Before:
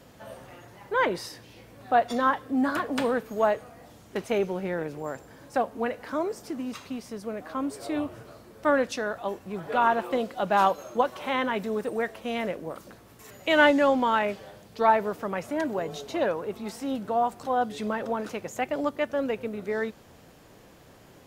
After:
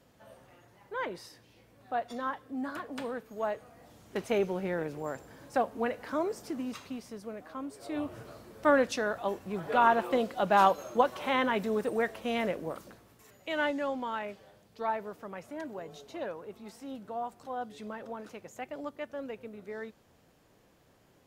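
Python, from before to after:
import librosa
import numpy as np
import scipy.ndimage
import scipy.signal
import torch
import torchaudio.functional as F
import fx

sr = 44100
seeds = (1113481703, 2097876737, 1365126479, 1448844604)

y = fx.gain(x, sr, db=fx.line((3.29, -11.0), (4.24, -2.5), (6.6, -2.5), (7.74, -10.0), (8.2, -1.0), (12.71, -1.0), (13.36, -11.5)))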